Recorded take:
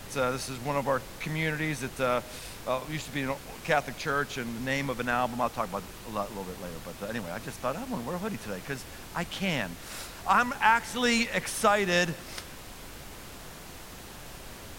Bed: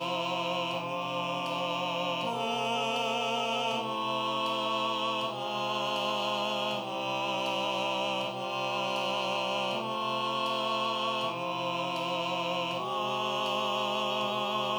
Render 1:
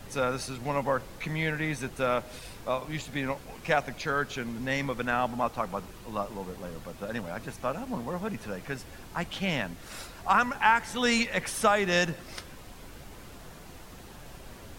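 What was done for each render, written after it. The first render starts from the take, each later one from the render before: denoiser 6 dB, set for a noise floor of -45 dBFS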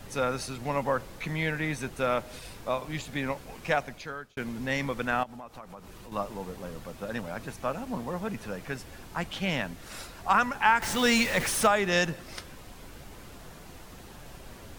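3.66–4.37 fade out; 5.23–6.12 compressor 4:1, threshold -42 dBFS; 10.82–11.67 zero-crossing step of -29 dBFS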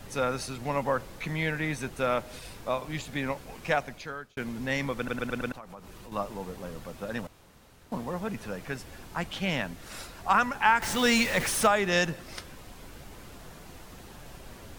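4.97 stutter in place 0.11 s, 5 plays; 7.27–7.92 room tone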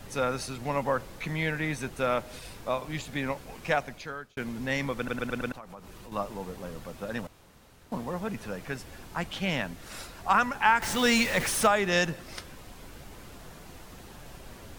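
nothing audible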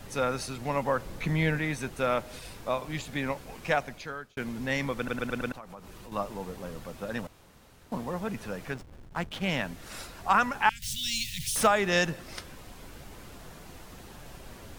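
1.05–1.59 low shelf 410 Hz +6.5 dB; 8.71–9.48 backlash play -36.5 dBFS; 10.69–11.56 elliptic band-stop 140–3200 Hz, stop band 80 dB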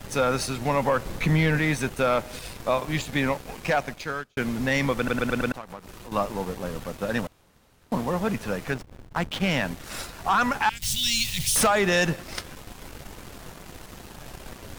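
sample leveller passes 2; limiter -13.5 dBFS, peak gain reduction 5 dB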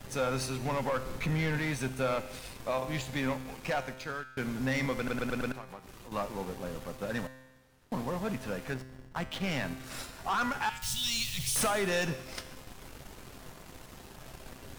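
in parallel at -8.5 dB: wavefolder -22.5 dBFS; on the sum: resonator 130 Hz, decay 1.1 s, harmonics all, mix 70%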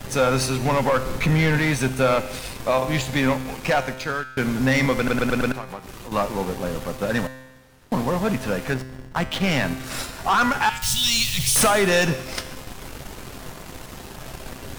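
gain +11.5 dB

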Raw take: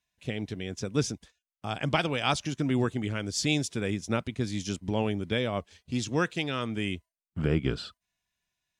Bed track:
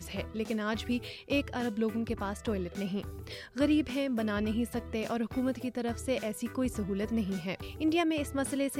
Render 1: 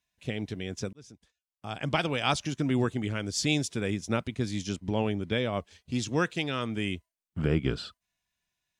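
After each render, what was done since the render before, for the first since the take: 0.93–2.12 fade in; 4.61–5.53 high shelf 8400 Hz -7.5 dB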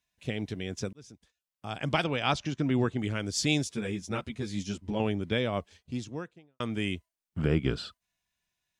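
2.04–2.99 air absorption 87 m; 3.64–5 ensemble effect; 5.51–6.6 studio fade out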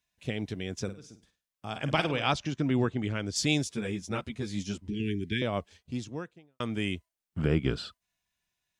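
0.83–2.28 flutter echo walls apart 8.7 m, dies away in 0.3 s; 2.85–3.36 air absorption 60 m; 4.88–5.42 Chebyshev band-stop 410–1600 Hz, order 5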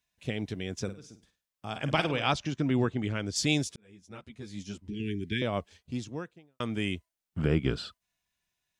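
3.76–5.47 fade in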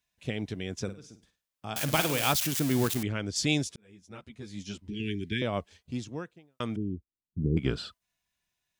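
1.76–3.03 switching spikes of -20.5 dBFS; 4.62–5.28 dynamic EQ 3500 Hz, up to +6 dB, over -58 dBFS, Q 0.84; 6.76–7.57 inverse Chebyshev low-pass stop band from 760 Hz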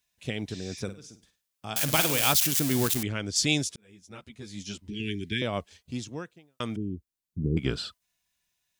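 0.53–0.78 spectral repair 1700–8700 Hz; high shelf 3100 Hz +7 dB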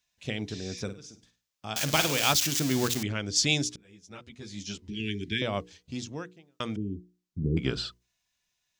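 resonant high shelf 7900 Hz -6.5 dB, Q 1.5; notches 60/120/180/240/300/360/420/480 Hz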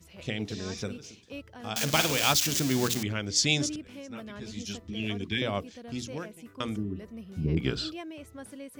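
add bed track -12 dB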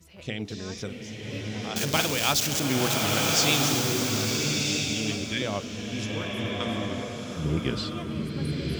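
bloom reverb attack 1.33 s, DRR -1.5 dB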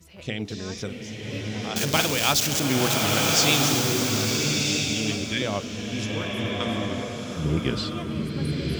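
gain +2.5 dB

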